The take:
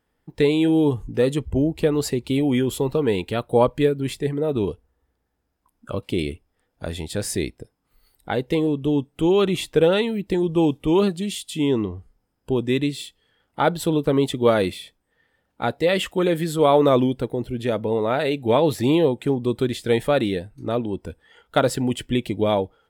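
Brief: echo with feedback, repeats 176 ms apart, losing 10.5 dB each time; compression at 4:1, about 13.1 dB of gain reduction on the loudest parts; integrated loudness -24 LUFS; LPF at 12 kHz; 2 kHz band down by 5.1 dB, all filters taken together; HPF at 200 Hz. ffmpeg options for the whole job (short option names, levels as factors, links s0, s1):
-af "highpass=200,lowpass=12000,equalizer=f=2000:t=o:g=-7,acompressor=threshold=0.0355:ratio=4,aecho=1:1:176|352|528:0.299|0.0896|0.0269,volume=2.66"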